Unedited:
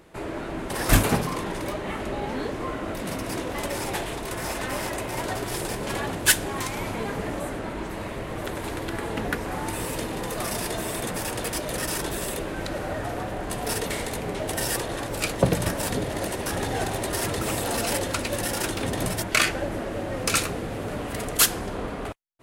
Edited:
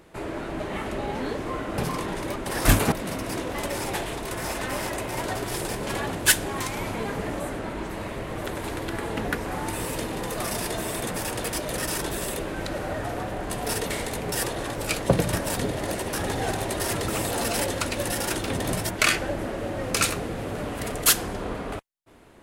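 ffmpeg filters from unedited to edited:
-filter_complex "[0:a]asplit=6[s0][s1][s2][s3][s4][s5];[s0]atrim=end=0.602[s6];[s1]atrim=start=1.738:end=2.922[s7];[s2]atrim=start=1.158:end=1.742[s8];[s3]atrim=start=0.598:end=1.162[s9];[s4]atrim=start=2.918:end=14.322[s10];[s5]atrim=start=14.648[s11];[s6][s7]acrossfade=d=0.004:c1=hsin:c2=hsin[s12];[s12][s8]acrossfade=d=0.004:c1=hsin:c2=hsin[s13];[s13][s9]acrossfade=d=0.004:c1=hsin:c2=hsin[s14];[s14][s10]acrossfade=d=0.004:c1=hsin:c2=hsin[s15];[s15][s11]acrossfade=d=0.004:c1=hsin:c2=hsin"

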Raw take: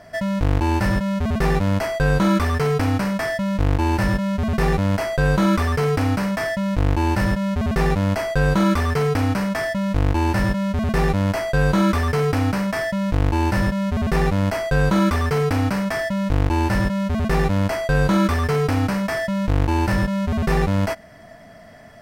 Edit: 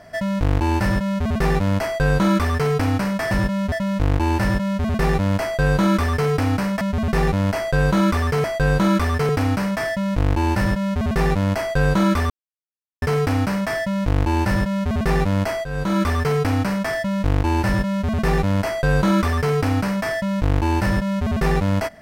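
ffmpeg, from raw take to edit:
-filter_complex "[0:a]asplit=8[s0][s1][s2][s3][s4][s5][s6][s7];[s0]atrim=end=3.312[s8];[s1]atrim=start=16.718:end=17.132[s9];[s2]atrim=start=3.308:end=6.402[s10];[s3]atrim=start=7.438:end=9.072[s11];[s4]atrim=start=5.018:end=5.872[s12];[s5]atrim=start=9.068:end=12.08,asetpts=PTS-STARTPTS,afade=t=out:st=3.008:d=0.004:c=hsin,apad=pad_dur=0.72[s13];[s6]atrim=start=12.08:end=14.71,asetpts=PTS-STARTPTS,afade=t=in:d=0.004:c=hsin,afade=t=out:st=2.626:d=0.004:c=hsin:silence=0.211349[s14];[s7]atrim=start=14.71,asetpts=PTS-STARTPTS,afade=t=in:d=0.44:silence=0.211349[s15];[s8][s9]acrossfade=d=0.004:c1=hsin:c2=hsin[s16];[s16][s10]acrossfade=d=0.004:c1=hsin:c2=hsin[s17];[s17][s11]acrossfade=d=0.004:c1=hsin:c2=hsin[s18];[s18][s12]acrossfade=d=0.004:c1=hsin:c2=hsin[s19];[s13][s14][s15]concat=n=3:v=0:a=1[s20];[s19][s20]acrossfade=d=0.004:c1=hsin:c2=hsin"

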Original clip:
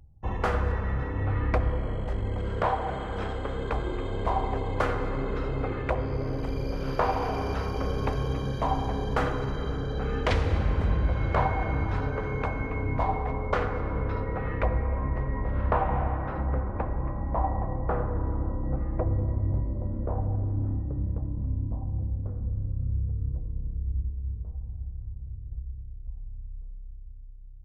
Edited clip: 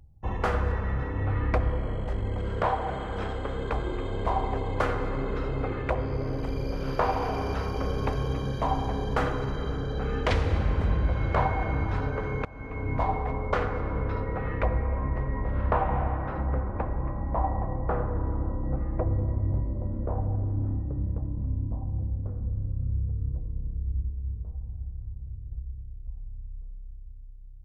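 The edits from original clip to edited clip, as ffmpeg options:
-filter_complex "[0:a]asplit=2[s0][s1];[s0]atrim=end=12.45,asetpts=PTS-STARTPTS,afade=t=out:st=12.446:d=0.004:c=hsin:silence=0.0749894[s2];[s1]atrim=start=12.45,asetpts=PTS-STARTPTS,afade=t=in:d=0.5:silence=0.0749894[s3];[s2][s3]concat=n=2:v=0:a=1"

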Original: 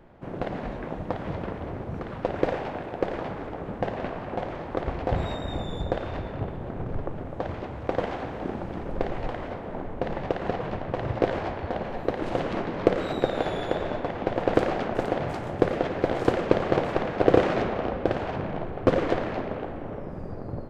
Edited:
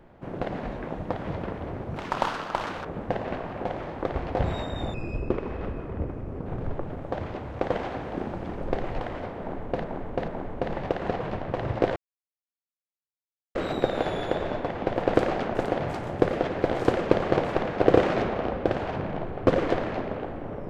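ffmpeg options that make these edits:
-filter_complex "[0:a]asplit=9[s0][s1][s2][s3][s4][s5][s6][s7][s8];[s0]atrim=end=1.964[s9];[s1]atrim=start=1.96:end=3.57,asetpts=PTS-STARTPTS,asetrate=79821,aresample=44100,atrim=end_sample=39227,asetpts=PTS-STARTPTS[s10];[s2]atrim=start=3.566:end=5.664[s11];[s3]atrim=start=5.66:end=6.74,asetpts=PTS-STARTPTS,asetrate=31311,aresample=44100[s12];[s4]atrim=start=6.736:end=10.122[s13];[s5]atrim=start=9.678:end=10.122[s14];[s6]atrim=start=9.678:end=11.36,asetpts=PTS-STARTPTS,afade=t=out:st=1.678:d=0.004:c=hsin[s15];[s7]atrim=start=11.36:end=12.95,asetpts=PTS-STARTPTS,volume=0[s16];[s8]atrim=start=12.95,asetpts=PTS-STARTPTS,afade=t=in:d=0.004:c=hsin[s17];[s9][s10]acrossfade=d=0.004:c1=hsin:c2=hsin[s18];[s18][s11]acrossfade=d=0.004:c1=hsin:c2=hsin[s19];[s19][s12]acrossfade=d=0.004:c1=hsin:c2=hsin[s20];[s20][s13]acrossfade=d=0.004:c1=hsin:c2=hsin[s21];[s21][s14]acrossfade=d=0.004:c1=hsin:c2=hsin[s22];[s15][s16][s17]concat=n=3:v=0:a=1[s23];[s22][s23]acrossfade=d=0.004:c1=hsin:c2=hsin"

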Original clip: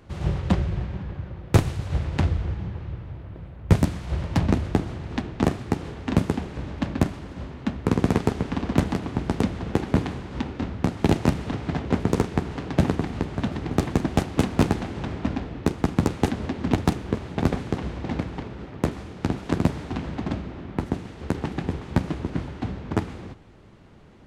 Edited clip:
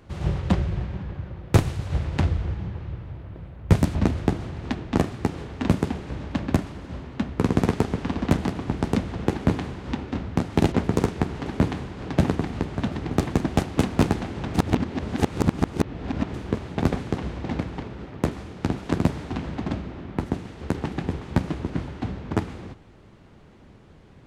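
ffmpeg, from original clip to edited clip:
-filter_complex "[0:a]asplit=7[s0][s1][s2][s3][s4][s5][s6];[s0]atrim=end=3.952[s7];[s1]atrim=start=4.418:end=11.192[s8];[s2]atrim=start=11.878:end=12.622[s9];[s3]atrim=start=9.798:end=10.362[s10];[s4]atrim=start=12.618:end=15.142[s11];[s5]atrim=start=15.138:end=16.942,asetpts=PTS-STARTPTS,areverse[s12];[s6]atrim=start=16.938[s13];[s7][s8]acrossfade=d=0.004:c1=hsin:c2=hsin[s14];[s14][s9]acrossfade=d=0.004:c1=hsin:c2=hsin[s15];[s15][s10]acrossfade=d=0.004:c1=hsin:c2=hsin[s16];[s16][s11]acrossfade=d=0.004:c1=hsin:c2=hsin[s17];[s17][s12]acrossfade=d=0.004:c1=hsin:c2=hsin[s18];[s18][s13]acrossfade=d=0.004:c1=hsin:c2=hsin"

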